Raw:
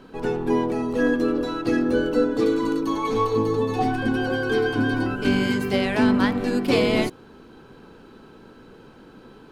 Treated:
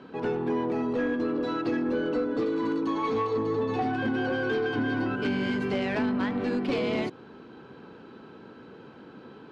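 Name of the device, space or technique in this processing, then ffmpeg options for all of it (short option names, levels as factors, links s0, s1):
AM radio: -af "highpass=110,lowpass=3800,acompressor=threshold=0.0794:ratio=6,asoftclip=type=tanh:threshold=0.1"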